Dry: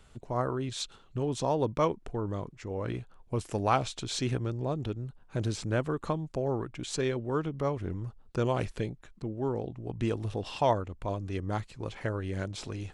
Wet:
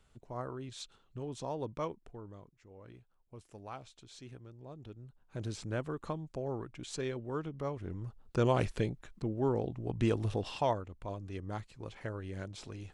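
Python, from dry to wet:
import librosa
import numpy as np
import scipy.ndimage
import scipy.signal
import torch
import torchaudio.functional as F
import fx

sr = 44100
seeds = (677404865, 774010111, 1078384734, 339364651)

y = fx.gain(x, sr, db=fx.line((1.82, -10.0), (2.61, -19.5), (4.5, -19.5), (5.53, -7.0), (7.81, -7.0), (8.46, 0.5), (10.33, 0.5), (10.81, -7.5)))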